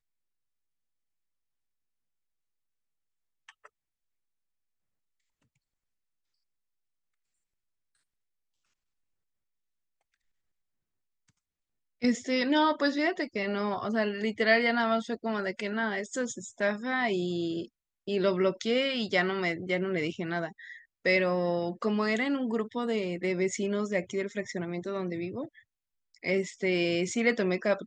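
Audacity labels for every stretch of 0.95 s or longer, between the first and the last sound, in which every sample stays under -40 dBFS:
3.660000	12.020000	silence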